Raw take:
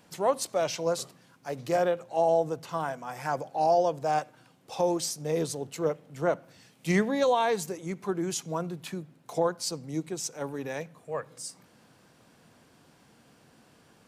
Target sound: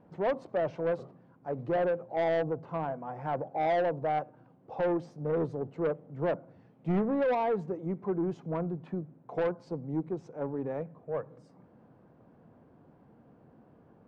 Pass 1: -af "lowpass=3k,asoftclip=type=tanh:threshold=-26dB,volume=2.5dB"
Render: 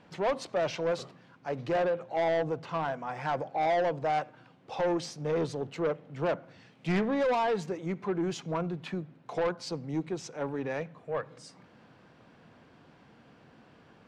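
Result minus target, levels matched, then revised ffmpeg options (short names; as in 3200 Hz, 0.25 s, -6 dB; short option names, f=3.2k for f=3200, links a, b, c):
4000 Hz band +10.0 dB
-af "lowpass=790,asoftclip=type=tanh:threshold=-26dB,volume=2.5dB"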